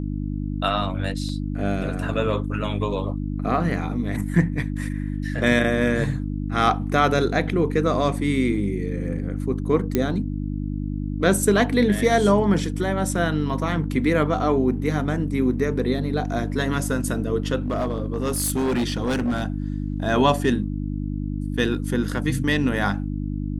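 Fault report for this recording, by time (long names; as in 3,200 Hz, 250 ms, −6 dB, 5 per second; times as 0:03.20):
mains hum 50 Hz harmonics 6 −27 dBFS
0:01.29: drop-out 2.1 ms
0:09.95: click −7 dBFS
0:17.66–0:19.43: clipping −19 dBFS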